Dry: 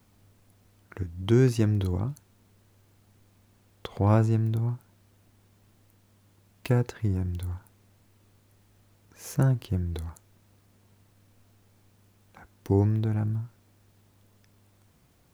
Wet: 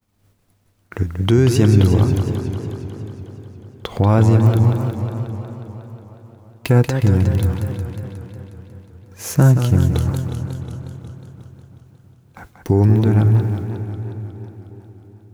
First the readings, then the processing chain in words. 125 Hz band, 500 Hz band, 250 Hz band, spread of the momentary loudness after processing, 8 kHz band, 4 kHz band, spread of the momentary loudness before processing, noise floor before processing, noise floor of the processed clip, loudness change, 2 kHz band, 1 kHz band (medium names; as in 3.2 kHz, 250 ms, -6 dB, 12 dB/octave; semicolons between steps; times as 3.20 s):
+12.0 dB, +10.0 dB, +11.0 dB, 21 LU, +13.0 dB, +12.5 dB, 20 LU, -63 dBFS, -59 dBFS, +10.0 dB, +11.0 dB, +10.0 dB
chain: expander -50 dBFS; on a send: filtered feedback delay 331 ms, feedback 63%, low-pass 4 kHz, level -17.5 dB; on the sum: loudness maximiser +16.5 dB; modulated delay 181 ms, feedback 71%, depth 158 cents, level -8 dB; trim -4 dB